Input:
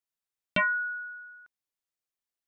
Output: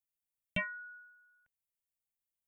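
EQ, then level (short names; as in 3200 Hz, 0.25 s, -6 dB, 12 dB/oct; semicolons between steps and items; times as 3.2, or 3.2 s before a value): dynamic EQ 1600 Hz, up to +5 dB, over -40 dBFS; bell 1100 Hz -14.5 dB 2.9 oct; fixed phaser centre 1300 Hz, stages 6; +2.0 dB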